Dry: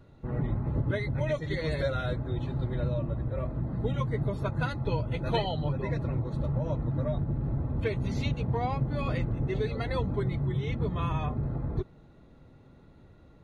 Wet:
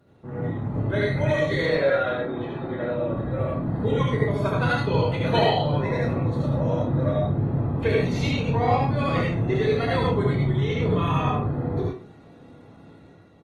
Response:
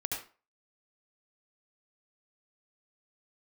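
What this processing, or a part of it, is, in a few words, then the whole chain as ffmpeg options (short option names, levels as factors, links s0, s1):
far-field microphone of a smart speaker: -filter_complex "[0:a]asettb=1/sr,asplit=3[s0][s1][s2];[s0]atrim=end=1.664[s3];[s1]atrim=start=1.66:end=3.08,asetpts=PTS-STARTPTS,afade=t=in:d=0.004:c=qsin,afade=t=out:st=1.416:d=0.004:c=qsin,acrossover=split=210 3300:gain=0.178 1 0.0891[s4][s5][s6];[s4][s5][s6]amix=inputs=3:normalize=0[s7];[s2]atrim=start=3.076[s8];[s3][s7]acrossfade=d=0.004:c1=hsin:c2=qsin[s9];[s9][s8]acrossfade=d=0.004:c1=qsin:c2=hsin,asplit=2[s10][s11];[s11]adelay=29,volume=0.562[s12];[s10][s12]amix=inputs=2:normalize=0[s13];[1:a]atrim=start_sample=2205[s14];[s13][s14]afir=irnorm=-1:irlink=0,highpass=140,dynaudnorm=f=590:g=3:m=2" -ar 48000 -c:a libopus -b:a 24k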